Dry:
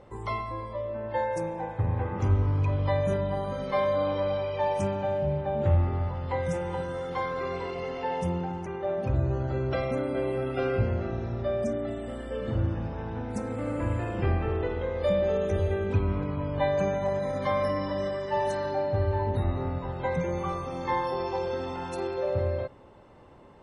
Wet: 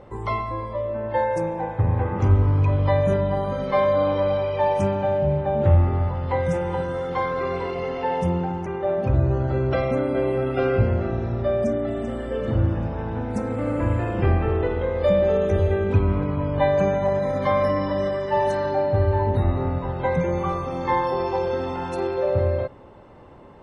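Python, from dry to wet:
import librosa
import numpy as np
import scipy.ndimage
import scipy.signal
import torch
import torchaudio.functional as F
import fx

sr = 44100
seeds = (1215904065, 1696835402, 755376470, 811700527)

y = fx.echo_throw(x, sr, start_s=11.55, length_s=0.44, ms=390, feedback_pct=45, wet_db=-10.0)
y = fx.high_shelf(y, sr, hz=3900.0, db=-8.0)
y = y * librosa.db_to_amplitude(6.5)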